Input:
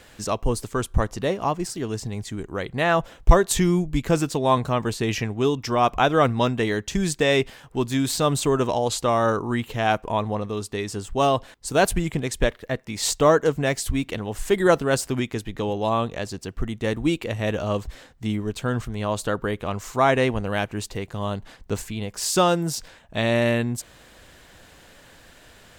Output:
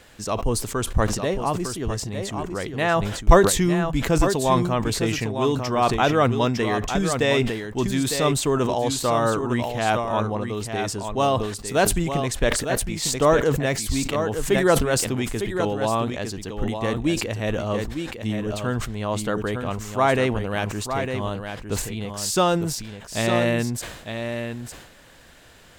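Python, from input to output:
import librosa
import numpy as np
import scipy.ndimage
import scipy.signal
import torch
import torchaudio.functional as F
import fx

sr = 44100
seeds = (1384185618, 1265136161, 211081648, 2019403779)

p1 = x + fx.echo_single(x, sr, ms=905, db=-7.5, dry=0)
p2 = fx.sustainer(p1, sr, db_per_s=60.0)
y = p2 * 10.0 ** (-1.0 / 20.0)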